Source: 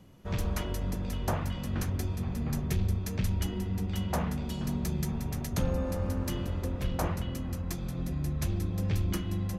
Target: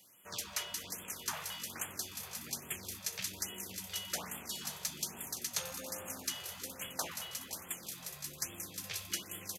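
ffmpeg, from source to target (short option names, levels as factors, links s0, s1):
-filter_complex "[0:a]asplit=2[s0][s1];[s1]asplit=5[s2][s3][s4][s5][s6];[s2]adelay=209,afreqshift=110,volume=0.178[s7];[s3]adelay=418,afreqshift=220,volume=0.0977[s8];[s4]adelay=627,afreqshift=330,volume=0.0537[s9];[s5]adelay=836,afreqshift=440,volume=0.0295[s10];[s6]adelay=1045,afreqshift=550,volume=0.0162[s11];[s7][s8][s9][s10][s11]amix=inputs=5:normalize=0[s12];[s0][s12]amix=inputs=2:normalize=0,acrossover=split=7500[s13][s14];[s14]acompressor=threshold=0.00178:ratio=4:attack=1:release=60[s15];[s13][s15]amix=inputs=2:normalize=0,highpass=60,aderivative,asplit=2[s16][s17];[s17]aecho=0:1:517|1034|1551|2068:0.251|0.103|0.0422|0.0173[s18];[s16][s18]amix=inputs=2:normalize=0,afftfilt=real='re*(1-between(b*sr/1024,240*pow(5000/240,0.5+0.5*sin(2*PI*1.2*pts/sr))/1.41,240*pow(5000/240,0.5+0.5*sin(2*PI*1.2*pts/sr))*1.41))':imag='im*(1-between(b*sr/1024,240*pow(5000/240,0.5+0.5*sin(2*PI*1.2*pts/sr))/1.41,240*pow(5000/240,0.5+0.5*sin(2*PI*1.2*pts/sr))*1.41))':win_size=1024:overlap=0.75,volume=3.35"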